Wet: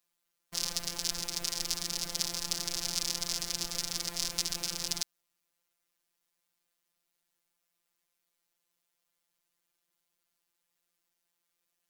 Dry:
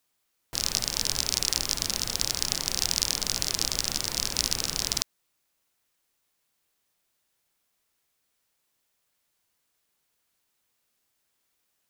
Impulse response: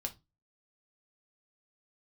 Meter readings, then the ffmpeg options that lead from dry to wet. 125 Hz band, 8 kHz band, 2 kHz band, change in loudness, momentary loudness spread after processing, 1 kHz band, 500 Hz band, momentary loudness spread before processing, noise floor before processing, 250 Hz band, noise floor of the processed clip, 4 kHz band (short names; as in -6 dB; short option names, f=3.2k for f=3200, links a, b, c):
-8.0 dB, -6.0 dB, -6.5 dB, -6.0 dB, 2 LU, -6.5 dB, -6.5 dB, 3 LU, -76 dBFS, -5.5 dB, -83 dBFS, -6.0 dB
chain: -af "aeval=exprs='val(0)*sin(2*PI*34*n/s)':c=same,afftfilt=real='hypot(re,im)*cos(PI*b)':imag='0':win_size=1024:overlap=0.75"